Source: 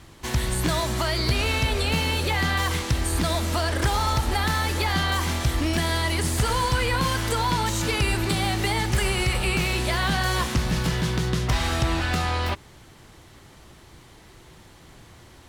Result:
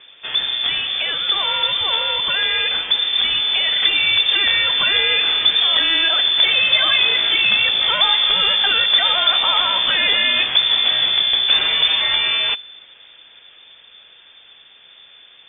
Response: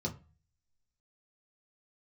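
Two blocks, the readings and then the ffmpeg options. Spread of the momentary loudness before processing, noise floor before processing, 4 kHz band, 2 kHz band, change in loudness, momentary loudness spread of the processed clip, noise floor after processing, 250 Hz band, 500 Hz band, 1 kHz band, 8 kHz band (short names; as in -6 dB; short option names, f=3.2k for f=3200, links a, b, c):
2 LU, -50 dBFS, +17.0 dB, +8.0 dB, +10.0 dB, 5 LU, -47 dBFS, -12.5 dB, -3.0 dB, 0.0 dB, under -40 dB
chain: -filter_complex "[0:a]dynaudnorm=f=350:g=21:m=4dB,asplit=2[a][b];[1:a]atrim=start_sample=2205[c];[b][c]afir=irnorm=-1:irlink=0,volume=-22dB[d];[a][d]amix=inputs=2:normalize=0,lowpass=f=3.1k:t=q:w=0.5098,lowpass=f=3.1k:t=q:w=0.6013,lowpass=f=3.1k:t=q:w=0.9,lowpass=f=3.1k:t=q:w=2.563,afreqshift=-3600,volume=3dB"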